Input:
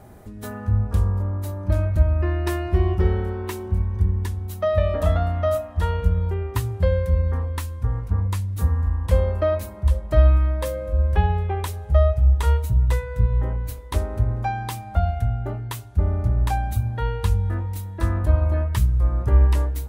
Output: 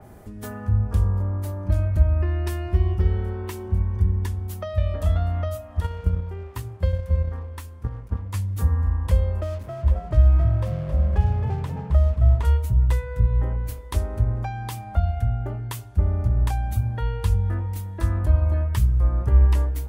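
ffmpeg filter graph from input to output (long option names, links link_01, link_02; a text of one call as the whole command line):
ffmpeg -i in.wav -filter_complex "[0:a]asettb=1/sr,asplit=3[link_01][link_02][link_03];[link_01]atrim=end=5.804[link_04];[link_02]atrim=start=5.8:end=8.34,asetpts=PTS-STARTPTS,afade=type=in:duration=0.004:curve=qsin,afade=type=out:start_time=2.536:duration=0.004:curve=qsin,bandreject=frequency=50:width_type=h:width=6,bandreject=frequency=100:width_type=h:width=6,bandreject=frequency=150:width_type=h:width=6,bandreject=frequency=200:width_type=h:width=6,bandreject=frequency=250:width_type=h:width=6,bandreject=frequency=300:width_type=h:width=6,bandreject=frequency=350:width_type=h:width=6,bandreject=frequency=400:width_type=h:width=6,agate=range=-7dB:threshold=-21dB:ratio=16:release=100:detection=peak,aeval=exprs='sgn(val(0))*max(abs(val(0))-0.00355,0)':channel_layout=same[link_05];[link_03]atrim=start=8.336[link_06];[link_04][link_05]acrossfade=duration=0.004:curve1=hsin:curve2=qsin[link_07];[link_07][link_06]acrossfade=duration=0.004:curve1=qsin:curve2=hsin,asettb=1/sr,asplit=3[link_08][link_09][link_10];[link_08]atrim=end=9.404[link_11];[link_09]atrim=start=9.4:end=12.45,asetpts=PTS-STARTPTS,afade=type=in:duration=0.004:curve=qsin,afade=type=out:start_time=3.046:duration=0.004:curve=qsin,lowpass=frequency=1600:poles=1,aeval=exprs='sgn(val(0))*max(abs(val(0))-0.0112,0)':channel_layout=same,asplit=6[link_12][link_13][link_14][link_15][link_16][link_17];[link_13]adelay=267,afreqshift=44,volume=-9dB[link_18];[link_14]adelay=534,afreqshift=88,volume=-16.1dB[link_19];[link_15]adelay=801,afreqshift=132,volume=-23.3dB[link_20];[link_16]adelay=1068,afreqshift=176,volume=-30.4dB[link_21];[link_17]adelay=1335,afreqshift=220,volume=-37.5dB[link_22];[link_12][link_18][link_19][link_20][link_21][link_22]amix=inputs=6:normalize=0,atrim=end_sample=134505[link_23];[link_10]atrim=start=12.446[link_24];[link_11][link_23]acrossfade=duration=0.004:curve1=hsin:curve2=qsin[link_25];[link_25][link_24]acrossfade=duration=0.004:curve1=qsin:curve2=hsin,bandreject=frequency=3900:width=18,acrossover=split=160|3000[link_26][link_27][link_28];[link_27]acompressor=threshold=-32dB:ratio=6[link_29];[link_26][link_29][link_28]amix=inputs=3:normalize=0,adynamicequalizer=threshold=0.00316:dfrequency=3700:dqfactor=0.7:tfrequency=3700:tqfactor=0.7:attack=5:release=100:ratio=0.375:range=1.5:mode=cutabove:tftype=highshelf" out.wav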